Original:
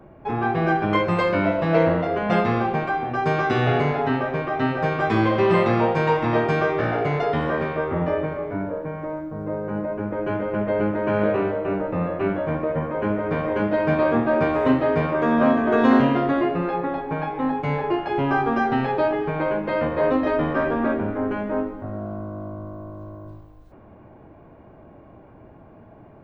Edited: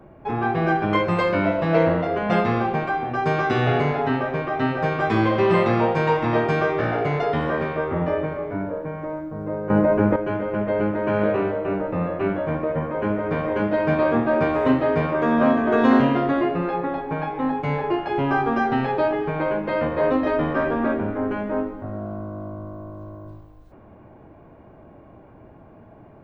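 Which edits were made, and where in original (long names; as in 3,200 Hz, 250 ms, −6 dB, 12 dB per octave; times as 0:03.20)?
0:09.70–0:10.16: clip gain +9.5 dB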